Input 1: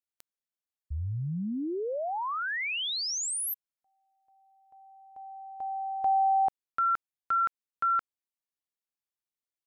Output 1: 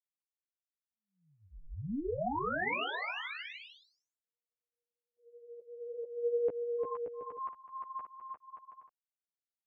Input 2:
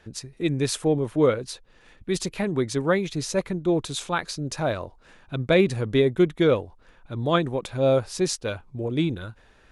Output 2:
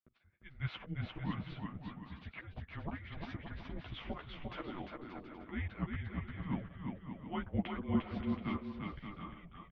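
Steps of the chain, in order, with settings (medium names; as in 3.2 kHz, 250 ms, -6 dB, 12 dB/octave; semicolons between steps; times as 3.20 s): gate -46 dBFS, range -41 dB; slow attack 414 ms; chorus voices 6, 0.56 Hz, delay 12 ms, depth 4.5 ms; on a send: bouncing-ball echo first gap 350 ms, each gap 0.65×, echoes 5; on the sum: mistuned SSB -300 Hz 390–3100 Hz; trim -1 dB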